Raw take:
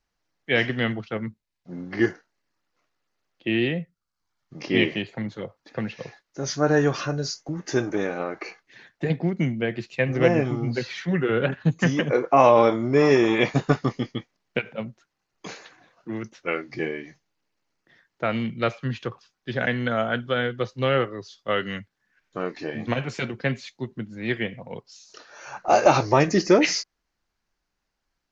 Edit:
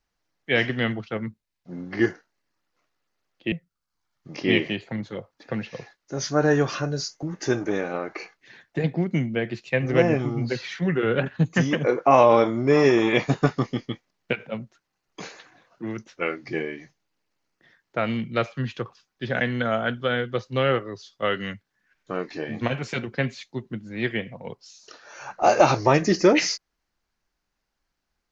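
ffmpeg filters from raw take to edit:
-filter_complex "[0:a]asplit=2[a][b];[a]atrim=end=3.522[c];[b]atrim=start=3.778[d];[c][d]acrossfade=d=0.004:c1=hsin:c2=hsin"

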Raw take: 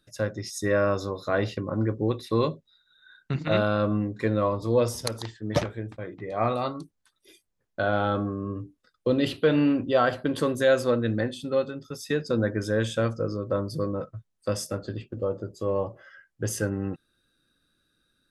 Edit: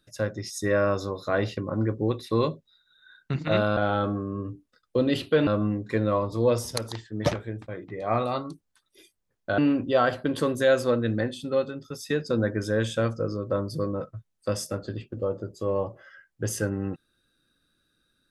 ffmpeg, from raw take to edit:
-filter_complex "[0:a]asplit=4[a][b][c][d];[a]atrim=end=3.772[e];[b]atrim=start=7.878:end=9.582[f];[c]atrim=start=3.768:end=7.882[g];[d]atrim=start=9.578[h];[e][f]acrossfade=d=0.004:c1=hsin:c2=hsin[i];[i][g]acrossfade=d=0.004:c1=hsin:c2=hsin[j];[j][h]acrossfade=d=0.004:c1=hsin:c2=hsin"

